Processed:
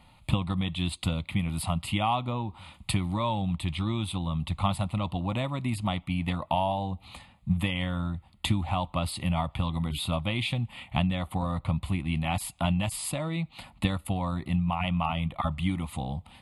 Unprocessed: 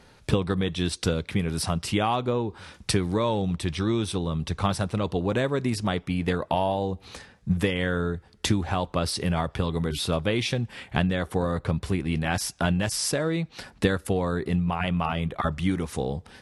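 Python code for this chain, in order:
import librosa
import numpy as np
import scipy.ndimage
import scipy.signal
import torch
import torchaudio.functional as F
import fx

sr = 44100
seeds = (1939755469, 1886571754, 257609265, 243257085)

y = fx.fixed_phaser(x, sr, hz=1600.0, stages=6)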